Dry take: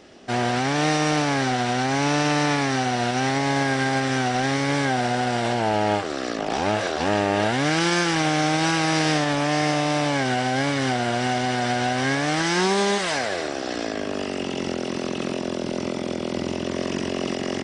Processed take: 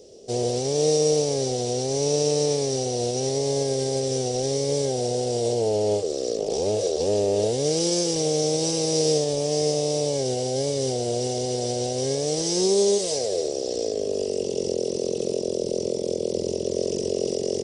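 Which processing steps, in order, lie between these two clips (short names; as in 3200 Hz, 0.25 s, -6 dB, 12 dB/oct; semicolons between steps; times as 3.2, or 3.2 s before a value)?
EQ curve 120 Hz 0 dB, 290 Hz -7 dB, 460 Hz +13 dB, 750 Hz -9 dB, 1500 Hz -27 dB, 5600 Hz +7 dB; gain -2 dB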